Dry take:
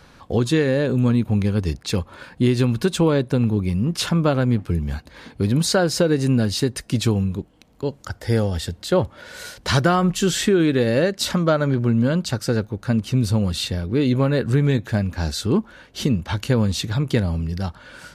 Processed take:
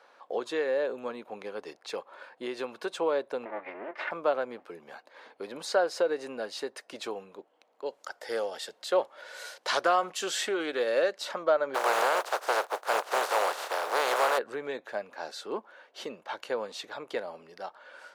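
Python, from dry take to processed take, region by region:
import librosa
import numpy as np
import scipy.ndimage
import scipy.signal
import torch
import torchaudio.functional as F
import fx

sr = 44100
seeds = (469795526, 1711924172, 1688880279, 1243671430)

y = fx.chain(x, sr, fx.lower_of_two(delay_ms=3.3),
    fx.lowpass_res(hz=2000.0, q=4.2), at=(3.45, 4.11))
y = fx.chain(y, sr, fx.high_shelf(hz=3100.0, db=9.5),
    fx.doppler_dist(depth_ms=0.11), at=(7.86, 11.18))
y = fx.spec_flatten(y, sr, power=0.24, at=(11.74, 14.37), fade=0.02)
y = fx.band_shelf(y, sr, hz=760.0, db=8.0, octaves=2.4, at=(11.74, 14.37), fade=0.02)
y = fx.tube_stage(y, sr, drive_db=11.0, bias=0.4, at=(11.74, 14.37), fade=0.02)
y = scipy.signal.sosfilt(scipy.signal.butter(4, 560.0, 'highpass', fs=sr, output='sos'), y)
y = fx.tilt_eq(y, sr, slope=-4.0)
y = y * 10.0 ** (-5.0 / 20.0)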